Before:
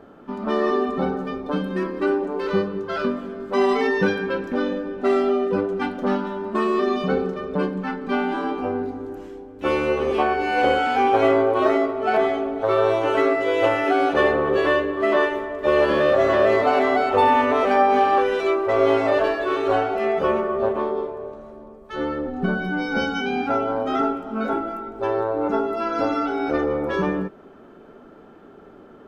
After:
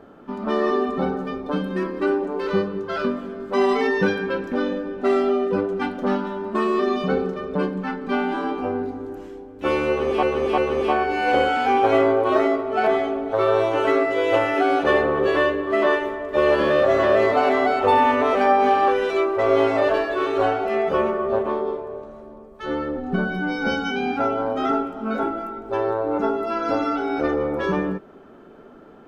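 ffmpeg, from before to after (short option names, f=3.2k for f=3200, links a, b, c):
-filter_complex "[0:a]asplit=3[a][b][c];[a]atrim=end=10.232[d];[b]atrim=start=9.878:end=10.232[e];[c]atrim=start=9.878[f];[d][e]acrossfade=d=0.004:c1=hsin:c2=hsin[g];[g][f]acrossfade=d=0.004:c1=hsin:c2=hsin"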